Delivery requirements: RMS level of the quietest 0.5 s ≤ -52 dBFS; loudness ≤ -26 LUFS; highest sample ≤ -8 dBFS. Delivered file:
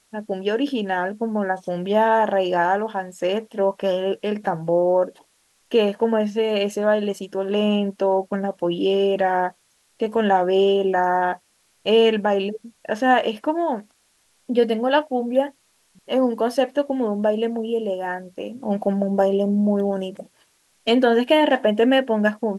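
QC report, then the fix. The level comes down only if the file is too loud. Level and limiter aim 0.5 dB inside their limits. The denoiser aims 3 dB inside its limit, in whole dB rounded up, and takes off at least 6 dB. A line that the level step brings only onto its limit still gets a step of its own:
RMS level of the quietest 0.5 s -63 dBFS: pass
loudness -21.5 LUFS: fail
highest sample -5.5 dBFS: fail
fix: trim -5 dB

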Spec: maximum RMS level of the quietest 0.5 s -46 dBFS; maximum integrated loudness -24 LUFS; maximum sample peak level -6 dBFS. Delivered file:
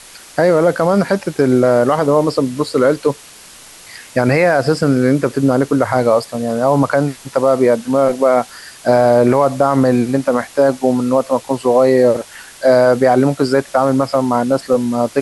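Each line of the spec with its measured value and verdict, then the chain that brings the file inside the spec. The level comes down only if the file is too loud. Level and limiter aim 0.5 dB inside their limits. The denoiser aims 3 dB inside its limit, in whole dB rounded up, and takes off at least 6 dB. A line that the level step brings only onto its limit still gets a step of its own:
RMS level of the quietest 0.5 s -39 dBFS: fail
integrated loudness -14.5 LUFS: fail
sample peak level -2.5 dBFS: fail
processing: trim -10 dB

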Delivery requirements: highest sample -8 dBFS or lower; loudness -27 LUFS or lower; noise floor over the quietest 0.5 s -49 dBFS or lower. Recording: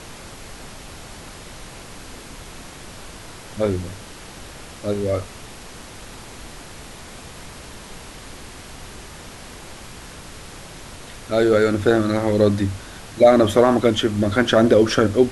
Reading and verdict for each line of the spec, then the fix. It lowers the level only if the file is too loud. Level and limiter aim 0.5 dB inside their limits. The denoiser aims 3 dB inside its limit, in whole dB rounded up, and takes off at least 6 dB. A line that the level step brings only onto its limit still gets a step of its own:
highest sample -2.5 dBFS: fail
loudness -18.0 LUFS: fail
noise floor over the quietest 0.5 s -38 dBFS: fail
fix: noise reduction 6 dB, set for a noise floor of -38 dBFS; trim -9.5 dB

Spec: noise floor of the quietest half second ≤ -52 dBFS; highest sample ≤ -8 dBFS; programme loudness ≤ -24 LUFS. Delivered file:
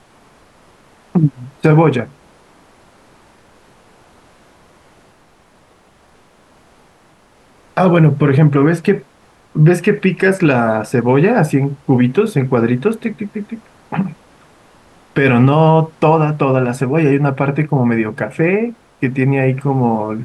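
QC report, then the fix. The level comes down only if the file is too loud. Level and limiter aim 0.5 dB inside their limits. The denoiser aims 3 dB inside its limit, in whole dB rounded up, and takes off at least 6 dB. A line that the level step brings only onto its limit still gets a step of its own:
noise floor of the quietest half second -50 dBFS: fail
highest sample -2.0 dBFS: fail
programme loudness -14.5 LUFS: fail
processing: trim -10 dB

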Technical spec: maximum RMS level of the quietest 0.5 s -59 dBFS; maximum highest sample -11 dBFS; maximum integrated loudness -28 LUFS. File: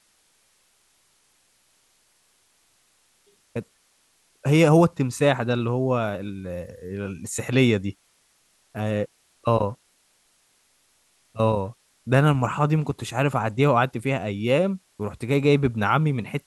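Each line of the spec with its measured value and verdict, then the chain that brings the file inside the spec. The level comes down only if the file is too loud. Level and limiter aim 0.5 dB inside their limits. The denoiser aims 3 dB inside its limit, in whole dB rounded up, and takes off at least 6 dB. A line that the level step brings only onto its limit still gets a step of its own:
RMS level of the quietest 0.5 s -64 dBFS: pass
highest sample -5.0 dBFS: fail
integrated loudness -23.0 LUFS: fail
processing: trim -5.5 dB; peak limiter -11.5 dBFS

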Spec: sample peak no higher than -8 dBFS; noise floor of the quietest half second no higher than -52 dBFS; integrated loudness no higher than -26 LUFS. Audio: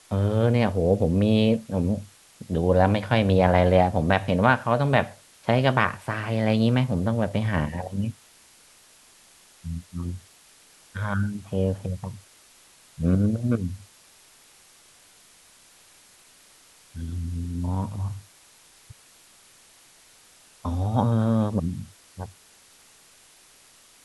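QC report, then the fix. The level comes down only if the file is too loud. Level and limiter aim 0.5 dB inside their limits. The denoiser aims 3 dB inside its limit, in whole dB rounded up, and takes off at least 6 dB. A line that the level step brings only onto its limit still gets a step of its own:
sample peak -4.0 dBFS: fail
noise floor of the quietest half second -55 dBFS: pass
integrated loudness -24.0 LUFS: fail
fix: trim -2.5 dB; peak limiter -8.5 dBFS

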